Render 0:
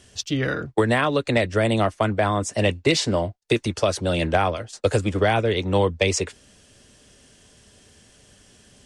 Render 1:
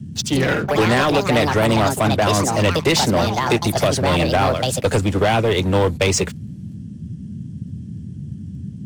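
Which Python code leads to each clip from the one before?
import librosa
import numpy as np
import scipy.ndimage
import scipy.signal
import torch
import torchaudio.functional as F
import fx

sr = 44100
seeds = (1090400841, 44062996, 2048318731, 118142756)

y = fx.echo_pitch(x, sr, ms=124, semitones=5, count=2, db_per_echo=-6.0)
y = fx.leveller(y, sr, passes=3)
y = fx.dmg_noise_band(y, sr, seeds[0], low_hz=76.0, high_hz=220.0, level_db=-26.0)
y = F.gain(torch.from_numpy(y), -5.0).numpy()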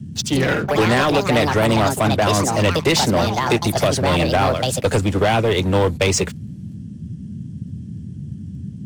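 y = x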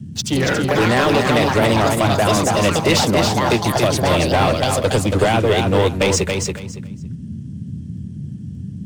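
y = fx.echo_feedback(x, sr, ms=280, feedback_pct=20, wet_db=-4.5)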